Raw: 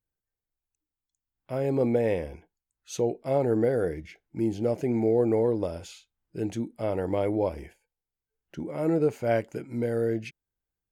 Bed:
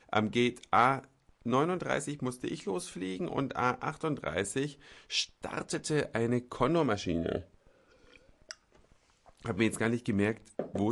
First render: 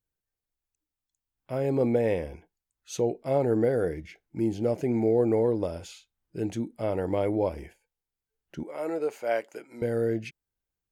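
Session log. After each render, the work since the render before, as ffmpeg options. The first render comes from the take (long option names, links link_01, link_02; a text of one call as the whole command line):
ffmpeg -i in.wav -filter_complex "[0:a]asettb=1/sr,asplit=3[link_01][link_02][link_03];[link_01]atrim=end=8.634[link_04];[link_02]atrim=start=8.63:end=9.82,asetpts=PTS-STARTPTS,afade=type=in:duration=0.004:curve=qsin,afade=type=out:start_time=1.186:duration=0.004:curve=qsin,highpass=510[link_05];[link_03]atrim=start=9.816[link_06];[link_04][link_05]acrossfade=duration=0.004:curve1=hsin:curve2=qsin[link_07];[link_07][link_06]acrossfade=duration=0.004:curve1=qsin:curve2=hsin" out.wav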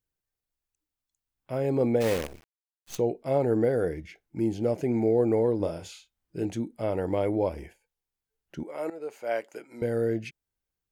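ffmpeg -i in.wav -filter_complex "[0:a]asplit=3[link_01][link_02][link_03];[link_01]afade=type=out:start_time=2:duration=0.02[link_04];[link_02]acrusher=bits=6:dc=4:mix=0:aa=0.000001,afade=type=in:start_time=2:duration=0.02,afade=type=out:start_time=2.97:duration=0.02[link_05];[link_03]afade=type=in:start_time=2.97:duration=0.02[link_06];[link_04][link_05][link_06]amix=inputs=3:normalize=0,asettb=1/sr,asplit=3[link_07][link_08][link_09];[link_07]atrim=end=5.574[link_10];[link_08]atrim=start=5.57:end=6.45,asetpts=PTS-STARTPTS,afade=type=in:duration=0.004:curve=qsin,afade=type=out:start_time=0.876:duration=0.004:curve=qsin,asplit=2[link_11][link_12];[link_12]adelay=30,volume=-6.5dB[link_13];[link_11][link_13]amix=inputs=2:normalize=0,atrim=end_sample=38808[link_14];[link_09]atrim=start=6.446[link_15];[link_10][link_14]acrossfade=duration=0.004:curve1=hsin:curve2=qsin[link_16];[link_16][link_15]acrossfade=duration=0.004:curve1=qsin:curve2=hsin,asplit=2[link_17][link_18];[link_17]atrim=end=8.9,asetpts=PTS-STARTPTS,afade=type=out:start_time=8.896:duration=0.004:curve=hsin:silence=0.199526[link_19];[link_18]atrim=start=8.9,asetpts=PTS-STARTPTS,afade=type=in:duration=0.8:curve=qsin:silence=0.199526[link_20];[link_19][link_20]concat=n=2:v=0:a=1" out.wav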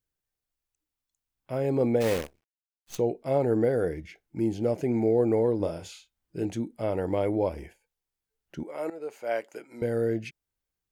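ffmpeg -i in.wav -filter_complex "[0:a]asplit=3[link_01][link_02][link_03];[link_01]atrim=end=2.31,asetpts=PTS-STARTPTS,afade=type=out:start_time=2.19:duration=0.12:silence=0.0841395[link_04];[link_02]atrim=start=2.31:end=2.84,asetpts=PTS-STARTPTS,volume=-21.5dB[link_05];[link_03]atrim=start=2.84,asetpts=PTS-STARTPTS,afade=type=in:duration=0.12:silence=0.0841395[link_06];[link_04][link_05][link_06]concat=n=3:v=0:a=1" out.wav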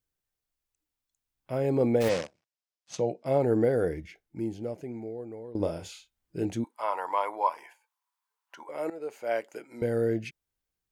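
ffmpeg -i in.wav -filter_complex "[0:a]asplit=3[link_01][link_02][link_03];[link_01]afade=type=out:start_time=2.08:duration=0.02[link_04];[link_02]highpass=frequency=110:width=0.5412,highpass=frequency=110:width=1.3066,equalizer=frequency=260:width_type=q:width=4:gain=-5,equalizer=frequency=400:width_type=q:width=4:gain=-9,equalizer=frequency=580:width_type=q:width=4:gain=5,equalizer=frequency=5200:width_type=q:width=4:gain=5,lowpass=frequency=8200:width=0.5412,lowpass=frequency=8200:width=1.3066,afade=type=in:start_time=2.08:duration=0.02,afade=type=out:start_time=3.24:duration=0.02[link_05];[link_03]afade=type=in:start_time=3.24:duration=0.02[link_06];[link_04][link_05][link_06]amix=inputs=3:normalize=0,asettb=1/sr,asplit=3[link_07][link_08][link_09];[link_07]atrim=end=6.644[link_10];[link_08]atrim=start=6.64:end=8.69,asetpts=PTS-STARTPTS,afade=type=in:duration=0.004:curve=qsin,afade=type=out:start_time=2.046:duration=0.004:curve=qsin,highpass=frequency=1000:width_type=q:width=8.4[link_11];[link_09]atrim=start=8.686[link_12];[link_10][link_11]acrossfade=duration=0.004:curve1=hsin:curve2=qsin[link_13];[link_13][link_12]acrossfade=duration=0.004:curve1=qsin:curve2=hsin,asplit=2[link_14][link_15];[link_14]atrim=end=5.55,asetpts=PTS-STARTPTS,afade=type=out:start_time=3.94:duration=1.61:curve=qua:silence=0.11885[link_16];[link_15]atrim=start=5.55,asetpts=PTS-STARTPTS,afade=type=in:duration=0.004:curve=hsin:silence=0.11885[link_17];[link_16][link_17]concat=n=2:v=0:a=1" out.wav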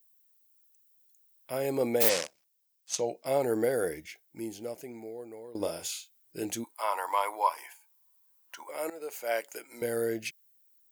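ffmpeg -i in.wav -af "aemphasis=mode=production:type=riaa" out.wav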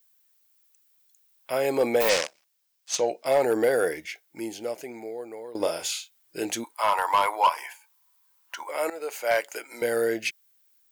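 ffmpeg -i in.wav -filter_complex "[0:a]asplit=2[link_01][link_02];[link_02]highpass=frequency=720:poles=1,volume=16dB,asoftclip=type=tanh:threshold=-5.5dB[link_03];[link_01][link_03]amix=inputs=2:normalize=0,lowpass=frequency=4000:poles=1,volume=-6dB,asoftclip=type=hard:threshold=-14dB" out.wav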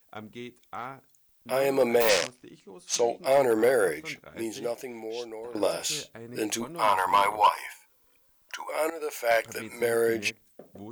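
ffmpeg -i in.wav -i bed.wav -filter_complex "[1:a]volume=-13dB[link_01];[0:a][link_01]amix=inputs=2:normalize=0" out.wav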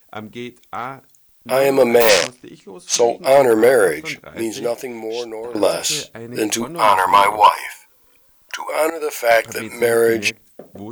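ffmpeg -i in.wav -af "volume=10dB" out.wav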